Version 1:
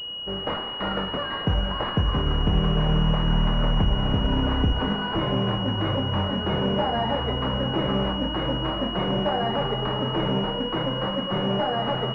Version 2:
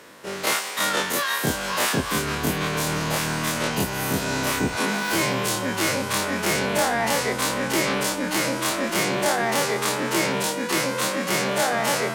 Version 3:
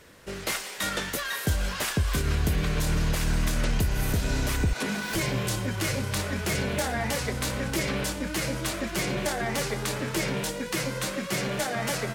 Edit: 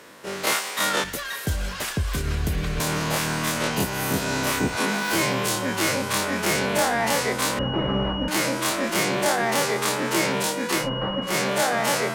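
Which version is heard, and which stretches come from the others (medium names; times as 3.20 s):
2
1.04–2.80 s: from 3
7.59–8.28 s: from 1
10.82–11.29 s: from 1, crossfade 0.16 s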